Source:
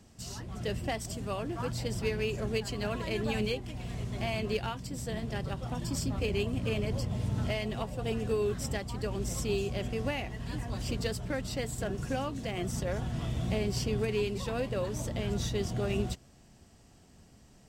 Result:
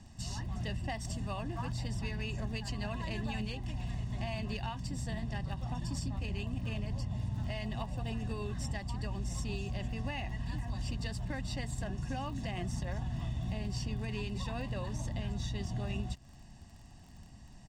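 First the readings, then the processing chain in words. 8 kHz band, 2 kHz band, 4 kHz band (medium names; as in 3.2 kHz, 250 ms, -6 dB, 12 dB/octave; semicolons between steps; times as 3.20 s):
-6.5 dB, -4.5 dB, -5.0 dB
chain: low-pass 8.1 kHz 12 dB/octave; bass shelf 61 Hz +6 dB; comb 1.1 ms, depth 66%; compression 4:1, threshold -34 dBFS, peak gain reduction 11 dB; crackle 24 per s -48 dBFS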